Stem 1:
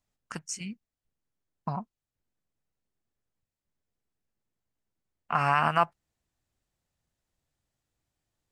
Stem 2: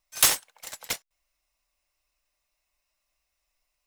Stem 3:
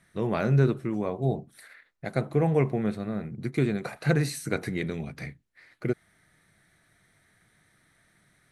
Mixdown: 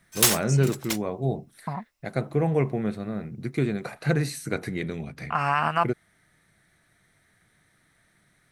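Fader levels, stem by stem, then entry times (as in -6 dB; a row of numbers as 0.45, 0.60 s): +0.5, 0.0, 0.0 dB; 0.00, 0.00, 0.00 s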